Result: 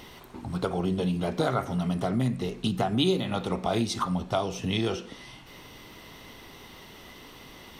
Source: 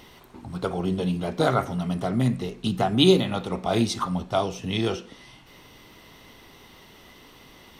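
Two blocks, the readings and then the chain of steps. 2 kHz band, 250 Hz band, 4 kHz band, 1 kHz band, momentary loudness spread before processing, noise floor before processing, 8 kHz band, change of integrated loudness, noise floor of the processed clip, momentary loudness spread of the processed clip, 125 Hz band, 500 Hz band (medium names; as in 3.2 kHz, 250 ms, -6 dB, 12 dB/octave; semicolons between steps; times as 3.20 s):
-3.0 dB, -3.0 dB, -4.5 dB, -3.0 dB, 10 LU, -51 dBFS, -2.5 dB, -3.5 dB, -48 dBFS, 20 LU, -2.5 dB, -4.0 dB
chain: compression 2.5:1, threshold -28 dBFS, peak gain reduction 11 dB; trim +2.5 dB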